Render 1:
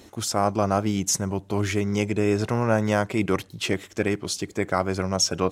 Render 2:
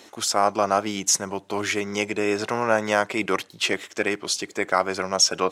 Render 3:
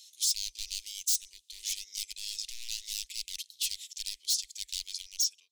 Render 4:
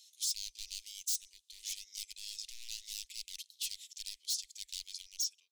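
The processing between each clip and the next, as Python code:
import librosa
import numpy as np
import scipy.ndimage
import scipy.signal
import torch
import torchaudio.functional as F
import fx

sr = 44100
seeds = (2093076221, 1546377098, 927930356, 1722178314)

y1 = fx.weighting(x, sr, curve='A')
y1 = F.gain(torch.from_numpy(y1), 4.0).numpy()
y2 = fx.fade_out_tail(y1, sr, length_s=0.59)
y2 = 10.0 ** (-20.5 / 20.0) * (np.abs((y2 / 10.0 ** (-20.5 / 20.0) + 3.0) % 4.0 - 2.0) - 1.0)
y2 = scipy.signal.sosfilt(scipy.signal.cheby2(4, 50, [100.0, 1500.0], 'bandstop', fs=sr, output='sos'), y2)
y3 = fx.peak_eq(y2, sr, hz=95.0, db=-5.0, octaves=2.8)
y3 = F.gain(torch.from_numpy(y3), -6.5).numpy()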